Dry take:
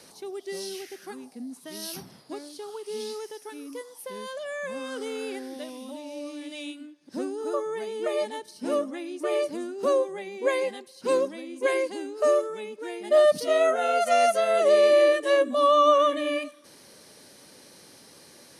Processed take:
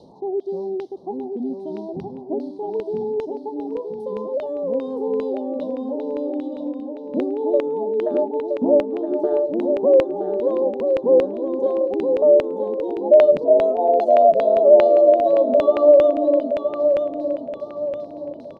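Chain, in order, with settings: elliptic band-stop 910–3800 Hz, stop band 40 dB; tilt shelf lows +5 dB, about 850 Hz; 8.06–9.50 s: transient shaper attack +6 dB, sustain -4 dB; in parallel at +2 dB: compression, threshold -29 dBFS, peak gain reduction 14 dB; on the sum: LFO low-pass saw down 2.5 Hz 480–2600 Hz; on a send: feedback delay 969 ms, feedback 40%, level -6 dB; on the sum: trim -1 dB

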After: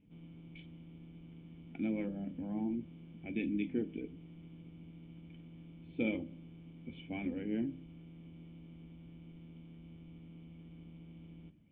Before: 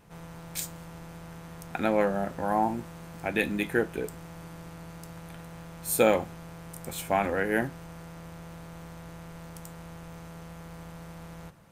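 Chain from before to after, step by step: coarse spectral quantiser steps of 15 dB; cascade formant filter i; de-hum 64.92 Hz, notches 9; trim +2.5 dB

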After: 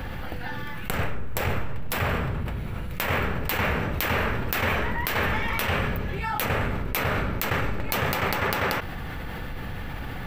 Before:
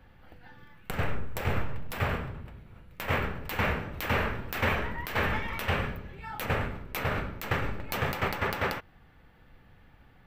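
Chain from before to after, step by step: treble shelf 5.8 kHz +4.5 dB; level flattener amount 70%

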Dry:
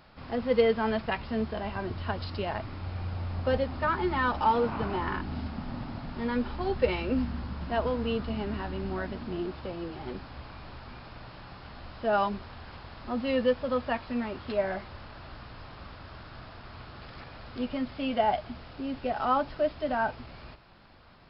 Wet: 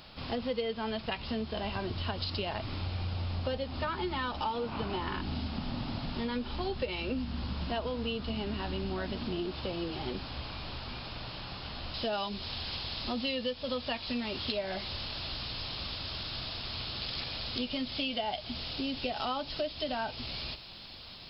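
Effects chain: resonant high shelf 2.4 kHz +7.5 dB, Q 1.5, from 11.94 s +13.5 dB; compression 6:1, threshold -34 dBFS, peak gain reduction 15.5 dB; trim +3 dB

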